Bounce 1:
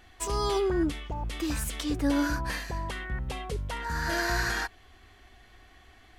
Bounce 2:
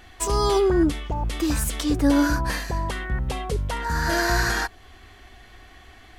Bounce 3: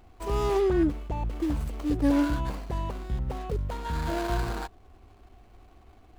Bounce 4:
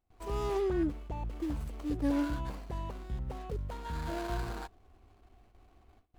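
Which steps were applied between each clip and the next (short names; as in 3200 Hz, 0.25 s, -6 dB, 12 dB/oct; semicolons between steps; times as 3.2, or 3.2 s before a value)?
dynamic EQ 2500 Hz, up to -4 dB, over -47 dBFS, Q 0.96; gain +7.5 dB
median filter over 25 samples; gain -4 dB
gate with hold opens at -45 dBFS; gain -7 dB; AAC 192 kbps 48000 Hz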